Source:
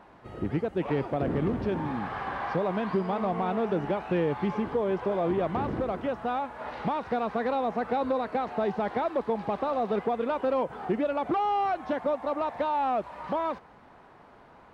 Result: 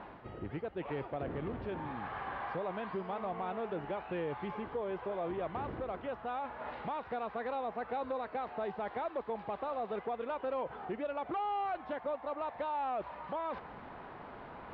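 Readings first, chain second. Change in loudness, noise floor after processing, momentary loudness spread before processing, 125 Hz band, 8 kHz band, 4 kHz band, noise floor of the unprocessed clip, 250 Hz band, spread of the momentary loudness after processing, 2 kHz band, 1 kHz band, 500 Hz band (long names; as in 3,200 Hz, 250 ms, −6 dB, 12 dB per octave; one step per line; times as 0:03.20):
−9.5 dB, −50 dBFS, 4 LU, −12.0 dB, can't be measured, −8.5 dB, −54 dBFS, −12.5 dB, 5 LU, −7.0 dB, −8.0 dB, −9.0 dB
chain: low-pass filter 3,800 Hz 24 dB per octave
dynamic equaliser 210 Hz, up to −7 dB, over −42 dBFS, Q 0.83
reversed playback
upward compression, threshold −28 dBFS
reversed playback
level −7.5 dB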